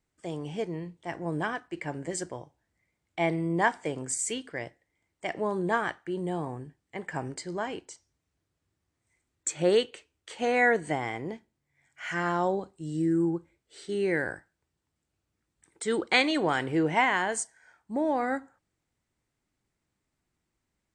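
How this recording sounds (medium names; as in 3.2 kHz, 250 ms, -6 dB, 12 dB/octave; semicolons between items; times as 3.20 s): noise floor -82 dBFS; spectral tilt -4.0 dB/octave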